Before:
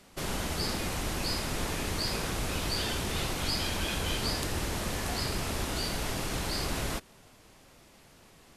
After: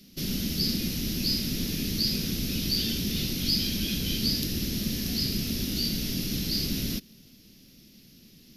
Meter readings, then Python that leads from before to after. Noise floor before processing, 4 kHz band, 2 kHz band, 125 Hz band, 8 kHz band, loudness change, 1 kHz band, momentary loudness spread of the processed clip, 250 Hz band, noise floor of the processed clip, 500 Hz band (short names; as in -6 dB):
-57 dBFS, +5.5 dB, -5.0 dB, +3.0 dB, +1.5 dB, +4.0 dB, -17.5 dB, 4 LU, +7.5 dB, -55 dBFS, -5.0 dB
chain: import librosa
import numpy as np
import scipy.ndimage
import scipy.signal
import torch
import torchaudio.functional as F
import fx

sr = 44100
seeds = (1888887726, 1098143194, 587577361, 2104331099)

y = fx.curve_eq(x, sr, hz=(100.0, 220.0, 930.0, 2700.0, 5500.0, 8200.0, 13000.0), db=(0, 11, -22, 0, 9, -10, 12))